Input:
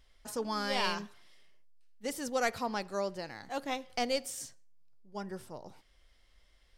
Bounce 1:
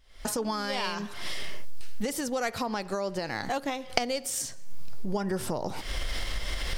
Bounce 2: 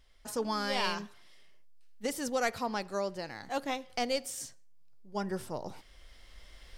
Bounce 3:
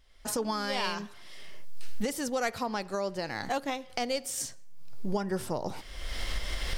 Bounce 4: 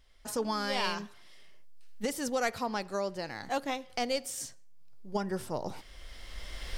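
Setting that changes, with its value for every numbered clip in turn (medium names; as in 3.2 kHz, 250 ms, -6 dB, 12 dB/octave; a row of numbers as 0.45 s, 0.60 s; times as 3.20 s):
recorder AGC, rising by: 86 dB/s, 5.6 dB/s, 35 dB/s, 14 dB/s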